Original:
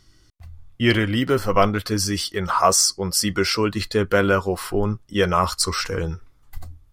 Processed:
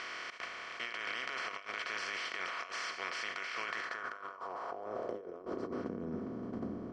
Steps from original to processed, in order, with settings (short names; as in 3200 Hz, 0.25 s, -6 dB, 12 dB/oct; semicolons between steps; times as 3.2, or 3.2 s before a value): per-bin compression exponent 0.2; gate -5 dBFS, range -25 dB; band-pass sweep 2300 Hz -> 230 Hz, 3.61–5.92; negative-ratio compressor -49 dBFS, ratio -1; air absorption 110 m; gain +8.5 dB